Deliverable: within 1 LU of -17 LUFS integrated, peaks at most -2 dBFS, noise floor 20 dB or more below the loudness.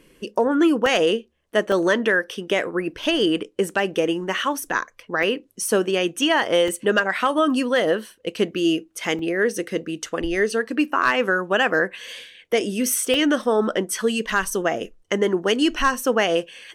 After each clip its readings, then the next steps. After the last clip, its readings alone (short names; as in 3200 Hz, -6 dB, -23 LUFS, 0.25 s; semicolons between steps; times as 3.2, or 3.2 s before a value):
dropouts 7; longest dropout 2.4 ms; loudness -21.5 LUFS; peak -8.0 dBFS; loudness target -17.0 LUFS
-> interpolate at 0.86/1.72/5.23/6.68/9.19/10.06/13.14, 2.4 ms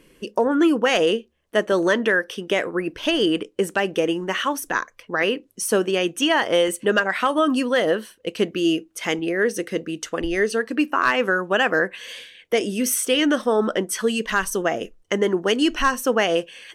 dropouts 0; loudness -21.5 LUFS; peak -8.0 dBFS; loudness target -17.0 LUFS
-> gain +4.5 dB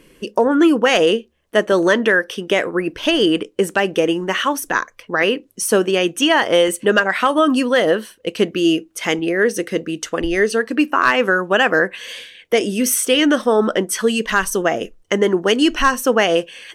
loudness -17.0 LUFS; peak -3.5 dBFS; noise floor -54 dBFS